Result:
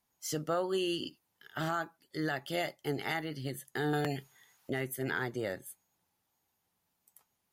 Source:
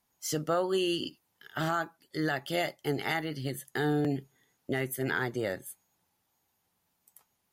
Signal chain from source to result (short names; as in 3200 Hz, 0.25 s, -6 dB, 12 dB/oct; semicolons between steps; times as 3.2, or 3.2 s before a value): 3.93–4.7 EQ curve 170 Hz 0 dB, 290 Hz -5 dB, 1000 Hz +11 dB; gain -3.5 dB